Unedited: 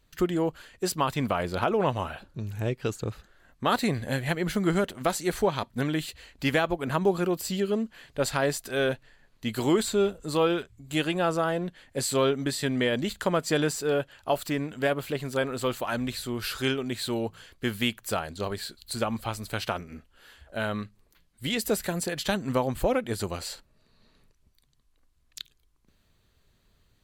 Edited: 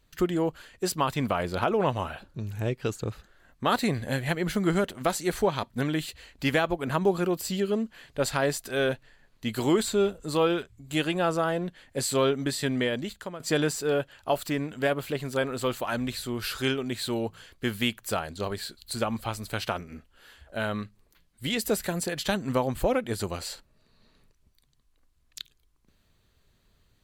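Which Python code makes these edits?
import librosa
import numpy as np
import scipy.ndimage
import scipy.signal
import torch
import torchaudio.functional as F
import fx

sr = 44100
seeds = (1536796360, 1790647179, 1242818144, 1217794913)

y = fx.edit(x, sr, fx.fade_out_to(start_s=12.73, length_s=0.67, floor_db=-17.5), tone=tone)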